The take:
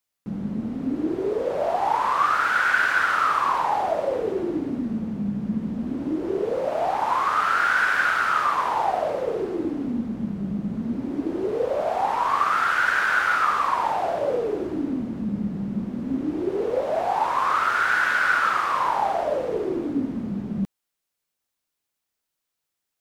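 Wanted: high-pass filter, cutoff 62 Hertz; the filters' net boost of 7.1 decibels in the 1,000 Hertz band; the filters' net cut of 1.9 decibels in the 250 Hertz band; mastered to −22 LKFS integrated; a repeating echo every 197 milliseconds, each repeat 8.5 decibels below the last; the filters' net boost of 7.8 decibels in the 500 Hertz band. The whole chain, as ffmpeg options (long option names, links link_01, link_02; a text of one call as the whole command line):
ffmpeg -i in.wav -af "highpass=62,equalizer=frequency=250:width_type=o:gain=-6,equalizer=frequency=500:width_type=o:gain=9,equalizer=frequency=1000:width_type=o:gain=7,aecho=1:1:197|394|591|788:0.376|0.143|0.0543|0.0206,volume=-6dB" out.wav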